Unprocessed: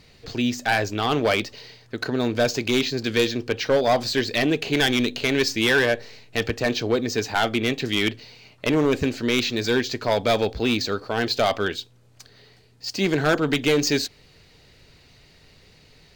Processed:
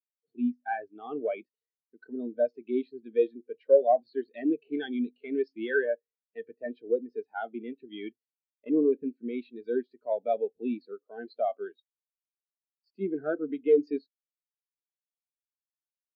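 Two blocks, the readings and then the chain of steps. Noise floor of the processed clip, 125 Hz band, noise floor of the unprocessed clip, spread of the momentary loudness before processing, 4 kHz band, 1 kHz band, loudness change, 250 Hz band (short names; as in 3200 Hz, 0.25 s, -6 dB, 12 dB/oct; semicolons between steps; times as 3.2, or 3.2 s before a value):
under -85 dBFS, under -25 dB, -54 dBFS, 8 LU, -29.5 dB, -9.0 dB, -7.5 dB, -8.0 dB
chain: three-band isolator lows -24 dB, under 150 Hz, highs -15 dB, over 4600 Hz; spectral expander 2.5:1; gain -2.5 dB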